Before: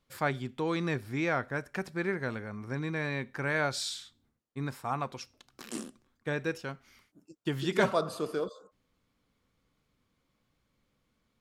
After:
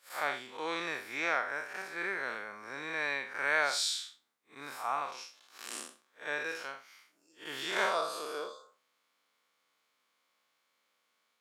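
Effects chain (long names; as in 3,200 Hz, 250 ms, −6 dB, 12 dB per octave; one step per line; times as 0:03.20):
spectrum smeared in time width 123 ms
high-pass filter 790 Hz 12 dB per octave
level +6 dB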